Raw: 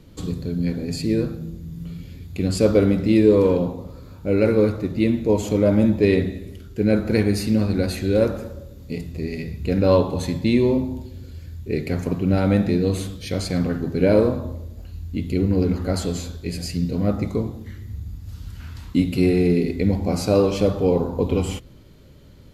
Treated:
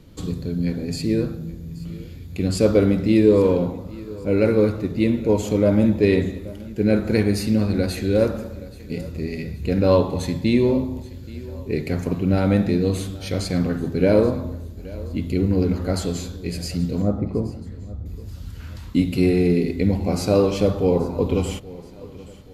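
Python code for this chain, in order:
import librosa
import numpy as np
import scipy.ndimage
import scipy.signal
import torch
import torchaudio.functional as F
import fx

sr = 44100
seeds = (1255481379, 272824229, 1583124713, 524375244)

p1 = fx.lowpass(x, sr, hz=1000.0, slope=12, at=(17.02, 18.06))
y = p1 + fx.echo_feedback(p1, sr, ms=827, feedback_pct=44, wet_db=-20, dry=0)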